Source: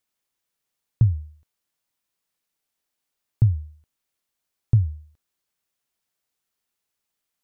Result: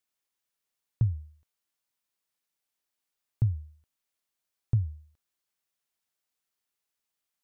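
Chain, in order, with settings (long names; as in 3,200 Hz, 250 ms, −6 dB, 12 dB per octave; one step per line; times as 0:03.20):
low-shelf EQ 470 Hz −4 dB
level −4 dB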